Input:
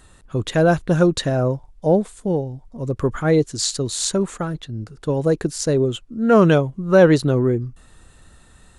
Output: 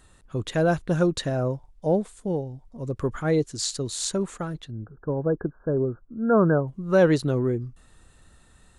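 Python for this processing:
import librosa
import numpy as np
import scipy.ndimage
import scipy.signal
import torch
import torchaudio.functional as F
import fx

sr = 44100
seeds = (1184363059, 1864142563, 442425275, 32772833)

y = fx.brickwall_lowpass(x, sr, high_hz=1700.0, at=(4.71, 6.68))
y = y * 10.0 ** (-6.0 / 20.0)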